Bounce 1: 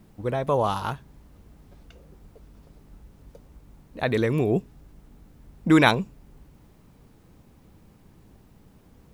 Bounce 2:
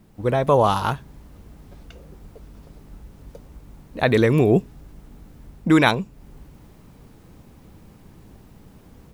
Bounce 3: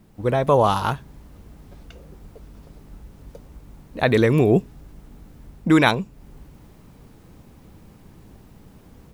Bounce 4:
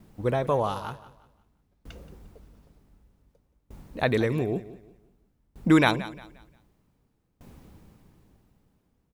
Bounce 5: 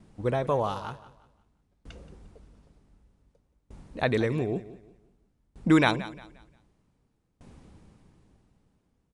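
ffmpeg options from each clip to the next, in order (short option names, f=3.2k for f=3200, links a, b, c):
-af "dynaudnorm=f=130:g=3:m=6.5dB"
-af anull
-af "aecho=1:1:176|352|528|704:0.211|0.093|0.0409|0.018,aeval=exprs='val(0)*pow(10,-28*if(lt(mod(0.54*n/s,1),2*abs(0.54)/1000),1-mod(0.54*n/s,1)/(2*abs(0.54)/1000),(mod(0.54*n/s,1)-2*abs(0.54)/1000)/(1-2*abs(0.54)/1000))/20)':c=same"
-af "aresample=22050,aresample=44100,volume=-1.5dB"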